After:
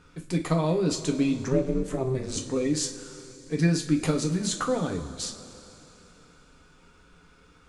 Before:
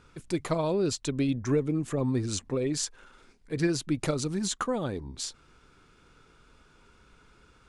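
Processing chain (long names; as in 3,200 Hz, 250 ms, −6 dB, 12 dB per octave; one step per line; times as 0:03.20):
coupled-rooms reverb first 0.26 s, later 3.3 s, from −18 dB, DRR 2 dB
0:01.48–0:02.37: ring modulation 130 Hz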